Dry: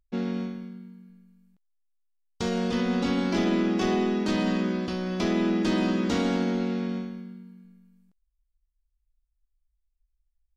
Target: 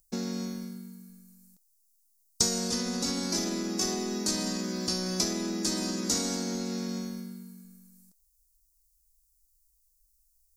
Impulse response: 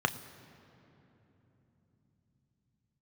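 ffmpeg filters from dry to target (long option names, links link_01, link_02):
-af "acompressor=threshold=-30dB:ratio=6,aexciter=amount=12.7:drive=6.6:freq=4700"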